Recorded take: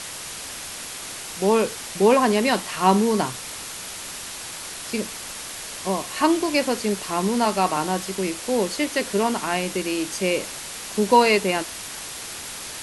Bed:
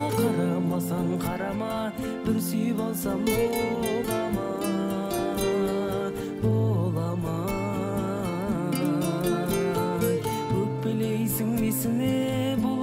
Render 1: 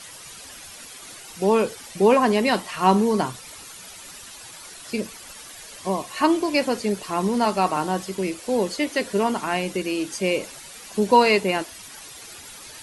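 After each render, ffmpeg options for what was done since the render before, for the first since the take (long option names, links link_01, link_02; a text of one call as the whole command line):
ffmpeg -i in.wav -af "afftdn=noise_reduction=11:noise_floor=-35" out.wav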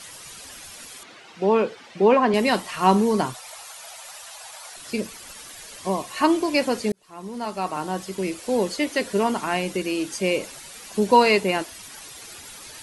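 ffmpeg -i in.wav -filter_complex "[0:a]asettb=1/sr,asplit=3[link_01][link_02][link_03];[link_01]atrim=end=1.034[link_04];[link_02]atrim=start=1.03:end=2.34,asetpts=PTS-STARTPTS,afade=type=in:duration=0.004:curve=qsin,afade=type=out:start_time=1.306:duration=0.004:curve=qsin,highpass=170,lowpass=3300[link_05];[link_03]atrim=start=2.336[link_06];[link_04][link_05]acrossfade=duration=0.004:curve1=hsin:curve2=qsin[link_07];[link_07][link_06]acrossfade=duration=0.004:curve1=qsin:curve2=hsin,asettb=1/sr,asplit=3[link_08][link_09][link_10];[link_08]atrim=end=3.344[link_11];[link_09]atrim=start=3.34:end=4.76,asetpts=PTS-STARTPTS,afade=type=in:duration=0.004:curve=qsin,afade=type=out:start_time=1.416:duration=0.004:curve=qsin,lowshelf=frequency=450:width_type=q:width=3:gain=-14[link_12];[link_10]atrim=start=4.756[link_13];[link_11][link_12]acrossfade=duration=0.004:curve1=hsin:curve2=qsin[link_14];[link_14][link_13]acrossfade=duration=0.004:curve1=qsin:curve2=hsin,asplit=2[link_15][link_16];[link_15]atrim=end=6.92,asetpts=PTS-STARTPTS,afade=type=out:start_time=6.916:duration=0.004:curve=hsin[link_17];[link_16]atrim=start=6.92,asetpts=PTS-STARTPTS,afade=type=in:duration=1.46[link_18];[link_17][link_18]concat=n=2:v=0:a=1" out.wav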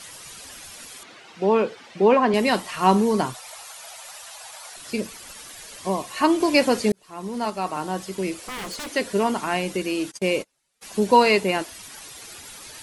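ffmpeg -i in.wav -filter_complex "[0:a]asettb=1/sr,asplit=3[link_01][link_02][link_03];[link_01]atrim=end=8.414[link_04];[link_02]atrim=start=8.41:end=8.93,asetpts=PTS-STARTPTS,afade=type=in:duration=0.004:curve=qsin,afade=type=out:start_time=0.516:duration=0.004:curve=qsin,aeval=exprs='0.0422*(abs(mod(val(0)/0.0422+3,4)-2)-1)':channel_layout=same[link_05];[link_03]atrim=start=8.926[link_06];[link_04][link_05]acrossfade=duration=0.004:curve1=hsin:curve2=qsin[link_07];[link_07][link_06]acrossfade=duration=0.004:curve1=qsin:curve2=hsin,asplit=3[link_08][link_09][link_10];[link_08]afade=type=out:start_time=10.1:duration=0.02[link_11];[link_09]agate=range=-33dB:threshold=-31dB:ratio=16:release=100:detection=peak,afade=type=in:start_time=10.1:duration=0.02,afade=type=out:start_time=10.81:duration=0.02[link_12];[link_10]afade=type=in:start_time=10.81:duration=0.02[link_13];[link_11][link_12][link_13]amix=inputs=3:normalize=0,asplit=3[link_14][link_15][link_16];[link_14]atrim=end=6.402[link_17];[link_15]atrim=start=6.398:end=7.502,asetpts=PTS-STARTPTS,volume=3.5dB[link_18];[link_16]atrim=start=7.498[link_19];[link_17][link_18]acrossfade=duration=0.004:curve1=hsin:curve2=hsin[link_20];[link_20][link_19]acrossfade=duration=0.004:curve1=hsin:curve2=hsin" out.wav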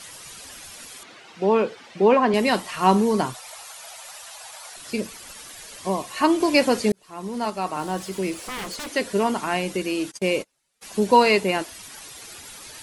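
ffmpeg -i in.wav -filter_complex "[0:a]asettb=1/sr,asplit=3[link_01][link_02][link_03];[link_01]atrim=end=7.794[link_04];[link_02]atrim=start=7.79:end=8.64,asetpts=PTS-STARTPTS,afade=type=in:duration=0.004:curve=qsin,afade=type=out:start_time=0.846:duration=0.004:curve=qsin,aeval=exprs='val(0)+0.5*0.0075*sgn(val(0))':channel_layout=same[link_05];[link_03]atrim=start=8.636[link_06];[link_04][link_05]acrossfade=duration=0.004:curve1=hsin:curve2=qsin[link_07];[link_07][link_06]acrossfade=duration=0.004:curve1=qsin:curve2=hsin" out.wav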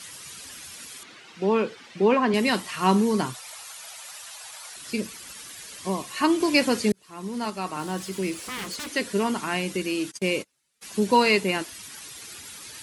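ffmpeg -i in.wav -af "highpass=69,equalizer=frequency=670:width_type=o:width=1.2:gain=-7" out.wav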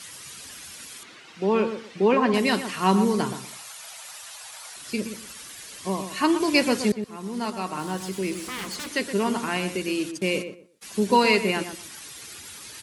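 ffmpeg -i in.wav -filter_complex "[0:a]asplit=2[link_01][link_02];[link_02]adelay=122,lowpass=frequency=1600:poles=1,volume=-8.5dB,asplit=2[link_03][link_04];[link_04]adelay=122,lowpass=frequency=1600:poles=1,volume=0.23,asplit=2[link_05][link_06];[link_06]adelay=122,lowpass=frequency=1600:poles=1,volume=0.23[link_07];[link_01][link_03][link_05][link_07]amix=inputs=4:normalize=0" out.wav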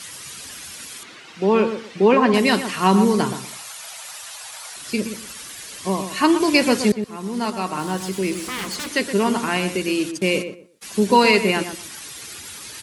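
ffmpeg -i in.wav -af "volume=5dB,alimiter=limit=-3dB:level=0:latency=1" out.wav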